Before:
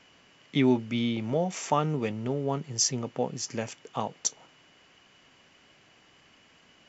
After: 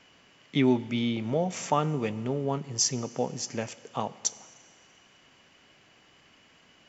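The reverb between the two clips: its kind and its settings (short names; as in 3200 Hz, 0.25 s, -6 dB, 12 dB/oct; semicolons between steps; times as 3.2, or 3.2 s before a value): Schroeder reverb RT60 2.1 s, combs from 33 ms, DRR 18 dB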